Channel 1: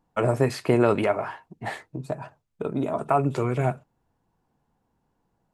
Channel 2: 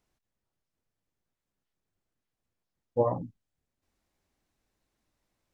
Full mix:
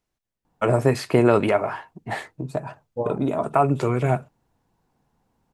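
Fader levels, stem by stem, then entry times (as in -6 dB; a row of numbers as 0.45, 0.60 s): +3.0, -1.5 dB; 0.45, 0.00 s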